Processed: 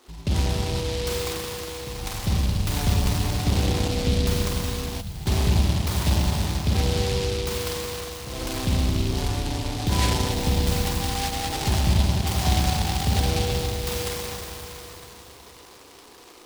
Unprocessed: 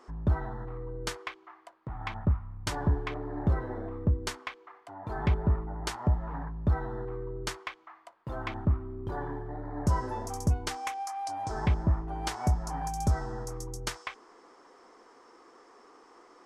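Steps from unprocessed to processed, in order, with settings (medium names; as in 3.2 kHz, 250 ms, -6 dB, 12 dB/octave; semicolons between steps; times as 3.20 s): Schroeder reverb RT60 3.9 s, combs from 31 ms, DRR -7 dB; time-frequency box 5.01–5.27 s, 220–2600 Hz -16 dB; delay time shaken by noise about 3.5 kHz, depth 0.16 ms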